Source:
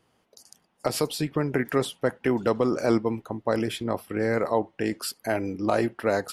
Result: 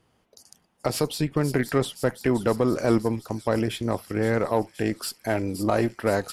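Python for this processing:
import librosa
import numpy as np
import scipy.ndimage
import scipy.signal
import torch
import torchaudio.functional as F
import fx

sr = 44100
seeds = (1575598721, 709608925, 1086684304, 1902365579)

y = fx.low_shelf(x, sr, hz=110.0, db=9.5)
y = fx.echo_wet_highpass(y, sr, ms=521, feedback_pct=70, hz=5200.0, wet_db=-6.0)
y = fx.cheby_harmonics(y, sr, harmonics=(8,), levels_db=(-30,), full_scale_db=-7.0)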